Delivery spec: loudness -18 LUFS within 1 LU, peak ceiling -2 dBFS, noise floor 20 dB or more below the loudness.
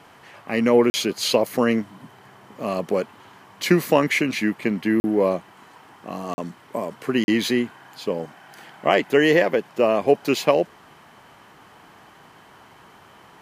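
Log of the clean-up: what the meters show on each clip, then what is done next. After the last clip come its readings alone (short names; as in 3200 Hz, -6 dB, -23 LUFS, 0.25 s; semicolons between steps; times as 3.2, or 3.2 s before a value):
dropouts 4; longest dropout 40 ms; loudness -22.0 LUFS; peak -2.5 dBFS; loudness target -18.0 LUFS
-> interpolate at 0.9/5/6.34/7.24, 40 ms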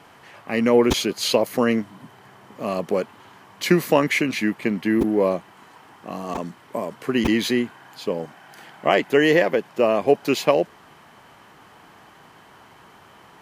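dropouts 0; loudness -21.5 LUFS; peak -2.5 dBFS; loudness target -18.0 LUFS
-> gain +3.5 dB; limiter -2 dBFS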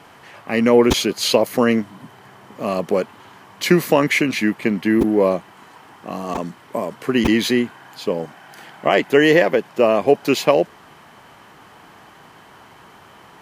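loudness -18.5 LUFS; peak -2.0 dBFS; noise floor -46 dBFS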